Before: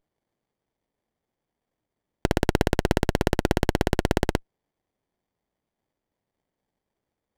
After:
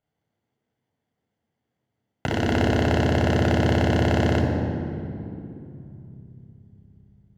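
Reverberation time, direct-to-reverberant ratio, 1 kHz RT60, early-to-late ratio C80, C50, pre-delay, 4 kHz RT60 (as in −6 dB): 2.8 s, −1.5 dB, 2.6 s, 4.0 dB, 3.0 dB, 3 ms, 1.7 s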